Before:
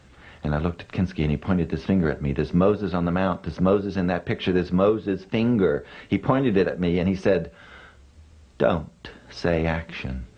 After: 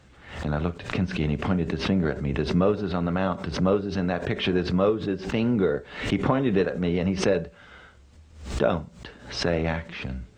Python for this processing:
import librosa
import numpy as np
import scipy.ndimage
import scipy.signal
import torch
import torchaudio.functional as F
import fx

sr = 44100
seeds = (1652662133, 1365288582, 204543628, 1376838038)

y = fx.pre_swell(x, sr, db_per_s=100.0)
y = y * 10.0 ** (-2.5 / 20.0)